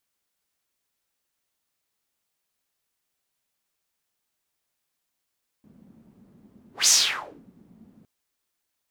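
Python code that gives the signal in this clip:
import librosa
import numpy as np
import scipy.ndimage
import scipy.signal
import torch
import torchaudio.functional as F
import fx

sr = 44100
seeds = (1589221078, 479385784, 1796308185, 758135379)

y = fx.whoosh(sr, seeds[0], length_s=2.41, peak_s=1.24, rise_s=0.17, fall_s=0.61, ends_hz=210.0, peak_hz=6500.0, q=4.3, swell_db=37.5)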